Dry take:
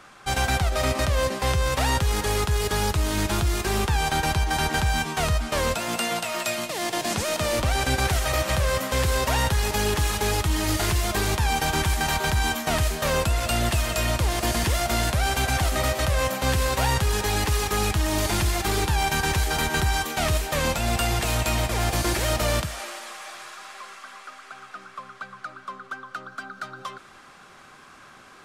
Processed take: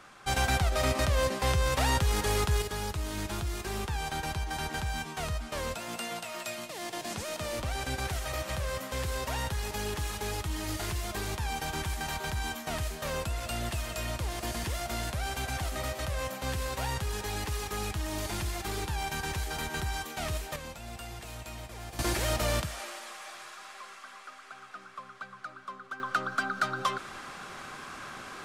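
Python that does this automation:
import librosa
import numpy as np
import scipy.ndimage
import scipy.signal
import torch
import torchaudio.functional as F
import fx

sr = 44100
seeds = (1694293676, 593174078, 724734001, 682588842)

y = fx.gain(x, sr, db=fx.steps((0.0, -4.0), (2.62, -10.5), (20.56, -18.5), (21.99, -5.5), (26.0, 6.0)))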